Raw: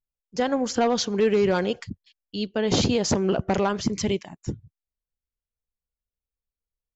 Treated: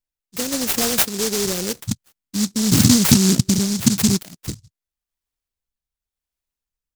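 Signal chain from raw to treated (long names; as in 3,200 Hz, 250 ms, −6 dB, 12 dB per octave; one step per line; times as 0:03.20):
loose part that buzzes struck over −35 dBFS, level −31 dBFS
0:01.78–0:04.18: octave-band graphic EQ 125/250/500/1,000/2,000/4,000 Hz +11/+11/−8/−9/−10/−4 dB
rotating-speaker cabinet horn 0.9 Hz
high shelf with overshoot 3,400 Hz +9.5 dB, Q 1.5
short delay modulated by noise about 5,700 Hz, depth 0.33 ms
level +1.5 dB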